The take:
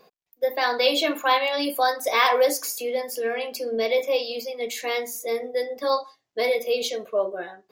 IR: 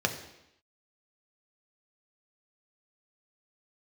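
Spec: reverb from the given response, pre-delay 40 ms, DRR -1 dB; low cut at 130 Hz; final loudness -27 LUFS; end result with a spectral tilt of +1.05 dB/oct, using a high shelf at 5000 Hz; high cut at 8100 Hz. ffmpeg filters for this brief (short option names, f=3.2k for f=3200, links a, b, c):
-filter_complex "[0:a]highpass=130,lowpass=8.1k,highshelf=f=5k:g=-7,asplit=2[a][b];[1:a]atrim=start_sample=2205,adelay=40[c];[b][c]afir=irnorm=-1:irlink=0,volume=-8.5dB[d];[a][d]amix=inputs=2:normalize=0,volume=-6.5dB"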